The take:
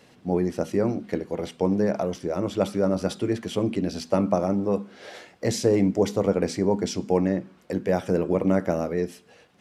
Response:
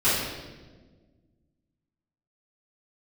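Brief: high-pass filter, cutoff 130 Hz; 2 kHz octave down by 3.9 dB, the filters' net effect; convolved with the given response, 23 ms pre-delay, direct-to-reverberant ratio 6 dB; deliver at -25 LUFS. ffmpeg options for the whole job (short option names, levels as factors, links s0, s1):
-filter_complex "[0:a]highpass=130,equalizer=f=2000:t=o:g=-5,asplit=2[s0][s1];[1:a]atrim=start_sample=2205,adelay=23[s2];[s1][s2]afir=irnorm=-1:irlink=0,volume=0.0794[s3];[s0][s3]amix=inputs=2:normalize=0,volume=0.944"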